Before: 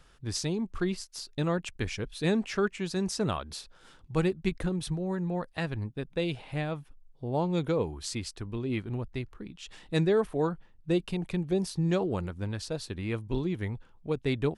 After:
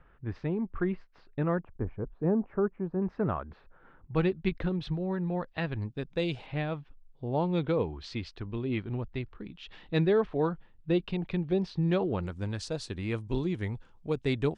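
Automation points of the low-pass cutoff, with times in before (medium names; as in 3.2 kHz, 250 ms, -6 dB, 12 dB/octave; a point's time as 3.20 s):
low-pass 24 dB/octave
2.1 kHz
from 1.59 s 1.1 kHz
from 3.02 s 1.8 kHz
from 4.15 s 3.9 kHz
from 5.82 s 7 kHz
from 6.46 s 4 kHz
from 12.23 s 8.5 kHz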